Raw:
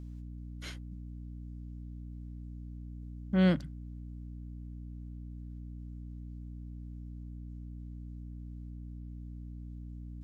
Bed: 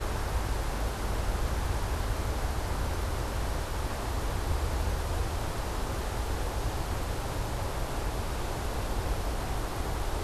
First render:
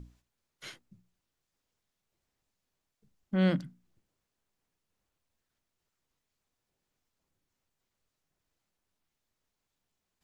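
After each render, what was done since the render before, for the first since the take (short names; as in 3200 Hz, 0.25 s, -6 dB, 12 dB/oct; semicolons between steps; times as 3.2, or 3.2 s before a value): notches 60/120/180/240/300 Hz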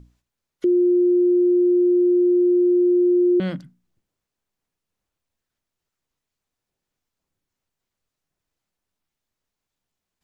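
0.64–3.4 bleep 355 Hz -13.5 dBFS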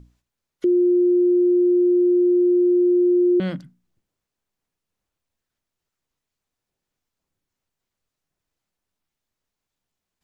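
nothing audible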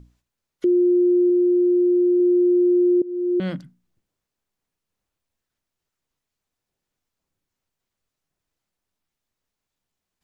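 1.28–2.2 doubler 15 ms -12.5 dB; 3.02–3.52 fade in, from -22 dB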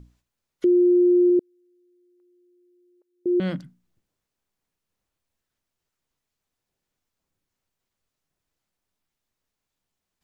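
1.39–3.26 HPF 1300 Hz 24 dB/oct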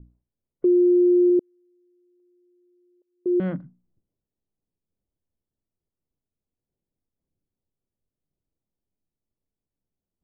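LPF 1600 Hz 12 dB/oct; low-pass opened by the level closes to 450 Hz, open at -15 dBFS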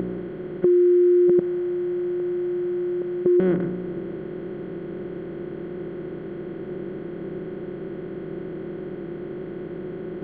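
per-bin compression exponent 0.2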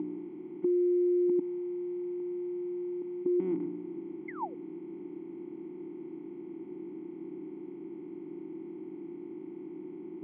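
4.28–4.55 painted sound fall 430–2200 Hz -24 dBFS; vowel filter u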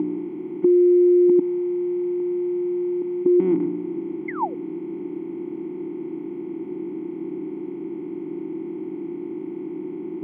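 gain +11.5 dB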